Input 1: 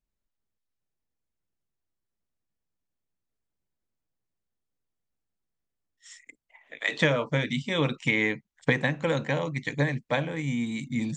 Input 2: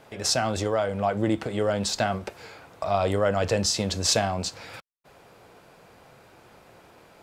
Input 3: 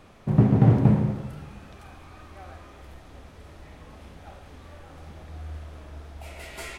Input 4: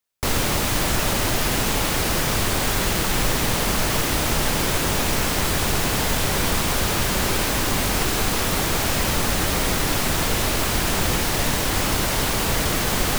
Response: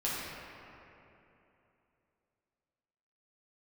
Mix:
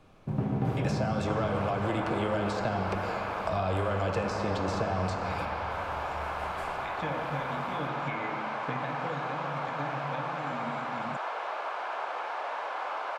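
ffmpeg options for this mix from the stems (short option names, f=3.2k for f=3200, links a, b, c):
-filter_complex "[0:a]volume=-16.5dB,asplit=2[a][b];[b]volume=-3.5dB[c];[1:a]acrossover=split=330|960[d][e][f];[d]acompressor=threshold=-38dB:ratio=4[g];[e]acompressor=threshold=-38dB:ratio=4[h];[f]acompressor=threshold=-36dB:ratio=4[i];[g][h][i]amix=inputs=3:normalize=0,adelay=650,volume=2.5dB,asplit=2[j][k];[k]volume=-6dB[l];[2:a]volume=-10.5dB,asplit=2[m][n];[n]volume=-3.5dB[o];[3:a]highpass=f=680:w=0.5412,highpass=f=680:w=1.3066,lowpass=1.2k,adelay=1050,volume=-1dB[p];[4:a]atrim=start_sample=2205[q];[c][l][o]amix=inputs=3:normalize=0[r];[r][q]afir=irnorm=-1:irlink=0[s];[a][j][m][p][s]amix=inputs=5:normalize=0,highshelf=f=5k:g=-5,bandreject=f=1.9k:w=9.3,acrossover=split=480|2800[t][u][v];[t]acompressor=threshold=-28dB:ratio=4[w];[u]acompressor=threshold=-31dB:ratio=4[x];[v]acompressor=threshold=-51dB:ratio=4[y];[w][x][y]amix=inputs=3:normalize=0"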